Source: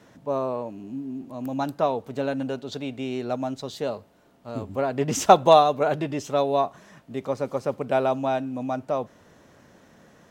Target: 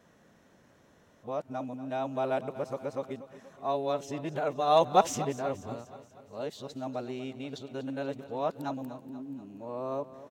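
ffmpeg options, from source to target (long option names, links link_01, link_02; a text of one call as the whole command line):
ffmpeg -i in.wav -af "areverse,bandreject=frequency=4800:width=24,aecho=1:1:240|480|720|960|1200:0.178|0.0978|0.0538|0.0296|0.0163,volume=-8dB" out.wav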